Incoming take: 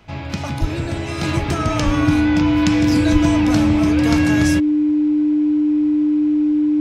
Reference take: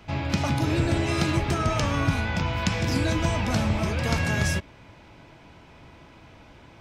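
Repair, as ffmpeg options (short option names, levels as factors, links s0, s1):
-filter_complex "[0:a]bandreject=f=300:w=30,asplit=3[s0][s1][s2];[s0]afade=t=out:st=0.6:d=0.02[s3];[s1]highpass=f=140:w=0.5412,highpass=f=140:w=1.3066,afade=t=in:st=0.6:d=0.02,afade=t=out:st=0.72:d=0.02[s4];[s2]afade=t=in:st=0.72:d=0.02[s5];[s3][s4][s5]amix=inputs=3:normalize=0,asplit=3[s6][s7][s8];[s6]afade=t=out:st=1.85:d=0.02[s9];[s7]highpass=f=140:w=0.5412,highpass=f=140:w=1.3066,afade=t=in:st=1.85:d=0.02,afade=t=out:st=1.97:d=0.02[s10];[s8]afade=t=in:st=1.97:d=0.02[s11];[s9][s10][s11]amix=inputs=3:normalize=0,asplit=3[s12][s13][s14];[s12]afade=t=out:st=3.12:d=0.02[s15];[s13]highpass=f=140:w=0.5412,highpass=f=140:w=1.3066,afade=t=in:st=3.12:d=0.02,afade=t=out:st=3.24:d=0.02[s16];[s14]afade=t=in:st=3.24:d=0.02[s17];[s15][s16][s17]amix=inputs=3:normalize=0,asetnsamples=n=441:p=0,asendcmd='1.23 volume volume -4.5dB',volume=1"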